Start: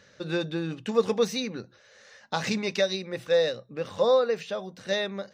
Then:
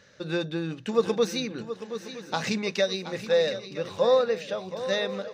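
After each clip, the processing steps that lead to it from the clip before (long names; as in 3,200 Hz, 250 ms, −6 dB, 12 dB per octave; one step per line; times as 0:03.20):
feedback echo with a long and a short gap by turns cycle 966 ms, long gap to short 3 to 1, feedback 35%, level −12 dB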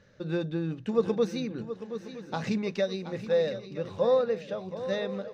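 spectral tilt −2.5 dB per octave
level −5 dB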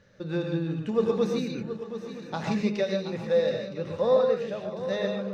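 reverb whose tail is shaped and stops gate 170 ms rising, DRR 2 dB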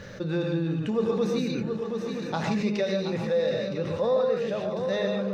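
envelope flattener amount 50%
level −3.5 dB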